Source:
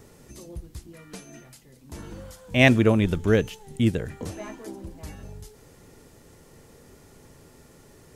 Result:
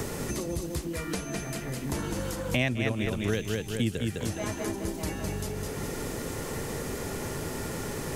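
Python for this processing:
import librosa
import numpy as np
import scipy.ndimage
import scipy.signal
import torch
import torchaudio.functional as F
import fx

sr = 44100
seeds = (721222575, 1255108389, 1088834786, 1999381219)

p1 = fx.high_shelf(x, sr, hz=2700.0, db=8.5)
p2 = p1 + fx.echo_feedback(p1, sr, ms=207, feedback_pct=37, wet_db=-5.5, dry=0)
p3 = fx.band_squash(p2, sr, depth_pct=100)
y = p3 * librosa.db_to_amplitude(-2.0)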